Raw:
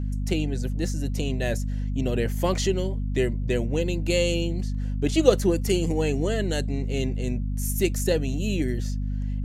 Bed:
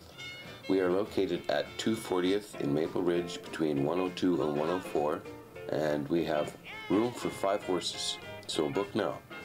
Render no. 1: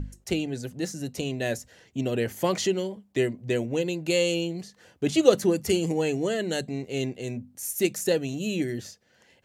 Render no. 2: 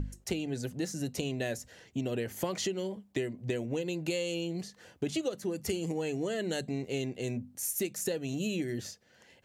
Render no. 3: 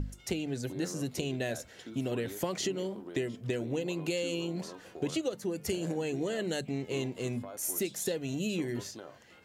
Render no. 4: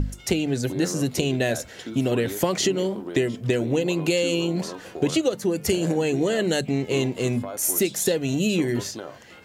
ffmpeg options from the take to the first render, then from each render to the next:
-af "bandreject=f=50:t=h:w=6,bandreject=f=100:t=h:w=6,bandreject=f=150:t=h:w=6,bandreject=f=200:t=h:w=6,bandreject=f=250:t=h:w=6"
-af "acompressor=threshold=0.0355:ratio=16"
-filter_complex "[1:a]volume=0.158[s0];[0:a][s0]amix=inputs=2:normalize=0"
-af "volume=3.35"

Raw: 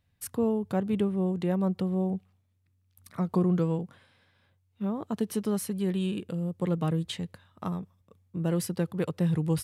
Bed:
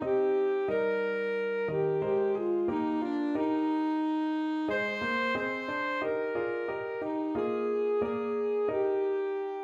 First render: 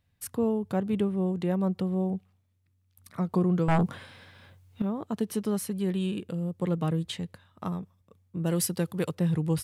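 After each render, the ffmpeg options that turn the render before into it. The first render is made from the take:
-filter_complex "[0:a]asettb=1/sr,asplit=3[s0][s1][s2];[s0]atrim=end=3.684[s3];[s1]atrim=start=3.68:end=4.82,asetpts=PTS-STARTPTS,afade=t=in:d=0.004:c=qsin,afade=t=out:st=1.136:d=0.004:c=qsin,aeval=exprs='0.112*sin(PI/2*3.16*val(0)/0.112)':c=same[s4];[s2]atrim=start=4.816[s5];[s3][s4]acrossfade=d=0.004:c1=hsin:c2=qsin[s6];[s6][s5]acrossfade=d=0.004:c1=qsin:c2=hsin,asettb=1/sr,asplit=3[s7][s8][s9];[s7]atrim=end=8.464[s10];[s8]atrim=start=8.46:end=9.15,asetpts=PTS-STARTPTS,afade=t=in:d=0.004:c=qsin,afade=t=out:st=0.686:d=0.004:c=qsin,highshelf=f=3400:g=9[s11];[s9]atrim=start=9.146[s12];[s10][s11]acrossfade=d=0.004:c1=hsin:c2=qsin[s13];[s13][s12]acrossfade=d=0.004:c1=qsin:c2=hsin"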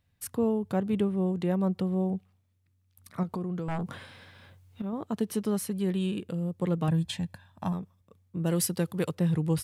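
-filter_complex "[0:a]asettb=1/sr,asplit=3[s0][s1][s2];[s0]atrim=end=3.234[s3];[s1]atrim=start=3.23:end=4.93,asetpts=PTS-STARTPTS,afade=t=in:d=0.004:c=qsin,afade=t=out:st=1.696:d=0.004:c=qsin,acompressor=threshold=0.0316:ratio=6:attack=3.2:release=140:knee=1:detection=peak[s4];[s2]atrim=start=4.926[s5];[s3][s4]acrossfade=d=0.004:c1=hsin:c2=qsin[s6];[s6][s5]acrossfade=d=0.004:c1=qsin:c2=hsin,asettb=1/sr,asplit=3[s7][s8][s9];[s7]atrim=end=6.884[s10];[s8]atrim=start=6.88:end=7.73,asetpts=PTS-STARTPTS,afade=t=in:d=0.004:c=qsin,afade=t=out:st=0.846:d=0.004:c=qsin,aecho=1:1:1.2:0.71,atrim=end_sample=37485[s11];[s9]atrim=start=7.726[s12];[s10][s11]acrossfade=d=0.004:c1=hsin:c2=qsin[s13];[s13][s12]acrossfade=d=0.004:c1=qsin:c2=hsin"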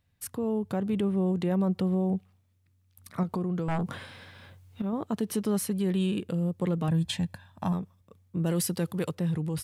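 -af "alimiter=limit=0.0708:level=0:latency=1:release=28,dynaudnorm=f=220:g=7:m=1.41"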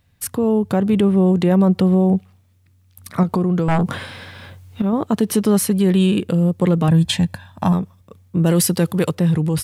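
-af "volume=3.98"

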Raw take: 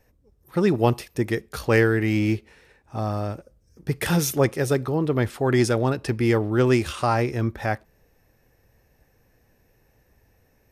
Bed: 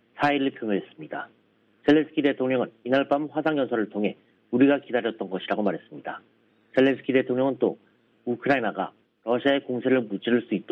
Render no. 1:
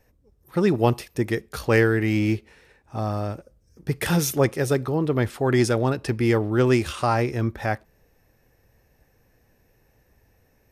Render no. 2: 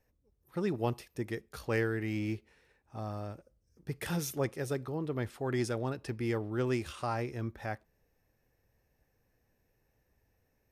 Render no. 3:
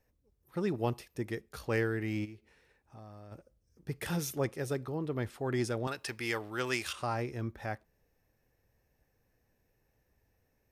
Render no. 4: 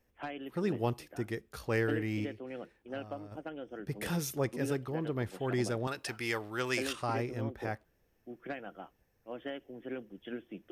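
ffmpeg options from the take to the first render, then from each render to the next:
-af anull
-af "volume=0.237"
-filter_complex "[0:a]asplit=3[s0][s1][s2];[s0]afade=t=out:st=2.24:d=0.02[s3];[s1]acompressor=threshold=0.00282:ratio=2.5:attack=3.2:release=140:knee=1:detection=peak,afade=t=in:st=2.24:d=0.02,afade=t=out:st=3.31:d=0.02[s4];[s2]afade=t=in:st=3.31:d=0.02[s5];[s3][s4][s5]amix=inputs=3:normalize=0,asettb=1/sr,asplit=3[s6][s7][s8];[s6]atrim=end=5.874[s9];[s7]atrim=start=5.87:end=6.93,asetpts=PTS-STARTPTS,afade=t=in:d=0.004:c=qsin,afade=t=out:st=1.056:d=0.004:c=qsin,tiltshelf=f=640:g=-10[s10];[s8]atrim=start=6.926[s11];[s9][s10]acrossfade=d=0.004:c1=hsin:c2=qsin[s12];[s12][s11]acrossfade=d=0.004:c1=qsin:c2=hsin"
-filter_complex "[1:a]volume=0.112[s0];[0:a][s0]amix=inputs=2:normalize=0"

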